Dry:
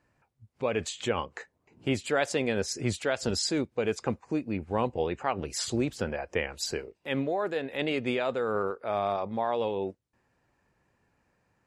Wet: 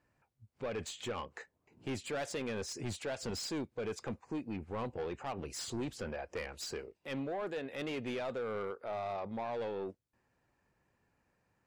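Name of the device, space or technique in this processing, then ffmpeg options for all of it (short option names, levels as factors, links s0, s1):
saturation between pre-emphasis and de-emphasis: -af "highshelf=f=3800:g=7.5,asoftclip=type=tanh:threshold=0.0422,highshelf=f=3800:g=-7.5,volume=0.562"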